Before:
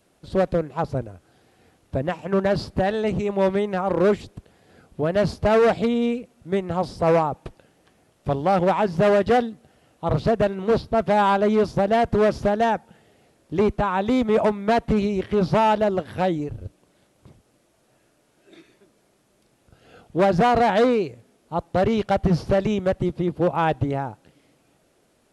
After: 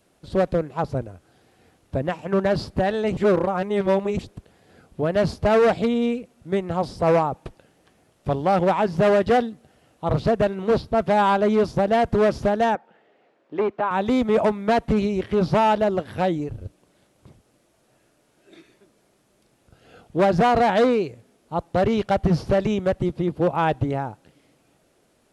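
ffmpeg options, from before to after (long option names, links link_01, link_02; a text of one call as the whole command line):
ffmpeg -i in.wav -filter_complex "[0:a]asettb=1/sr,asplit=3[link_01][link_02][link_03];[link_01]atrim=end=12.754[link_04];[link_02]atrim=start=12.75:end=13.91,asetpts=PTS-STARTPTS,afade=type=in:duration=0.004:curve=qsin,afade=type=out:start_time=1.156:duration=0.004:curve=qsin,highpass=360,lowpass=2400[link_05];[link_03]atrim=start=13.906[link_06];[link_04][link_05]acrossfade=duration=0.004:curve1=hsin:curve2=qsin[link_07];[link_07][link_06]acrossfade=duration=0.004:curve1=qsin:curve2=hsin,asplit=3[link_08][link_09][link_10];[link_08]atrim=end=3.172[link_11];[link_09]atrim=start=3.168:end=4.192,asetpts=PTS-STARTPTS,areverse[link_12];[link_10]atrim=start=4.188[link_13];[link_11][link_12]acrossfade=duration=0.004:curve1=hsin:curve2=hsin[link_14];[link_14][link_13]acrossfade=duration=0.004:curve1=hsin:curve2=hsin" out.wav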